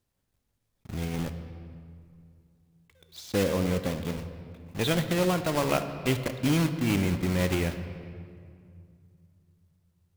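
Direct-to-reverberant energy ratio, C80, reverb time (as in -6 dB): 8.5 dB, 10.5 dB, 2.3 s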